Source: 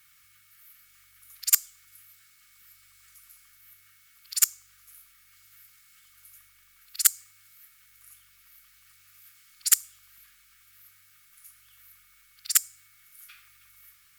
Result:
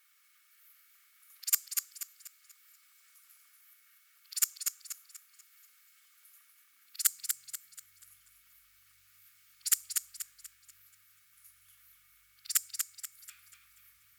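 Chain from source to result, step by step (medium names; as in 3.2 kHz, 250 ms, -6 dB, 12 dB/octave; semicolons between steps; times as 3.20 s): high-pass sweep 450 Hz -> 62 Hz, 6.43–8.05 s; modulated delay 242 ms, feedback 39%, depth 53 cents, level -5 dB; trim -7.5 dB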